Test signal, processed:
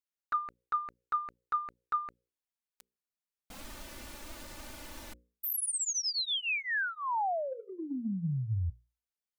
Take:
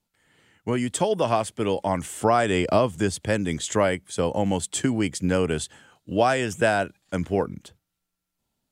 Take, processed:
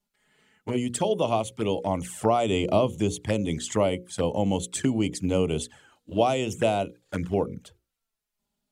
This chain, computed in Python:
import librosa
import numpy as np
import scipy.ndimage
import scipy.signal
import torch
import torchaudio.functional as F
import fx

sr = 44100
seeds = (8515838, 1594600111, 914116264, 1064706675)

y = fx.hum_notches(x, sr, base_hz=60, count=9)
y = fx.env_flanger(y, sr, rest_ms=4.9, full_db=-22.0)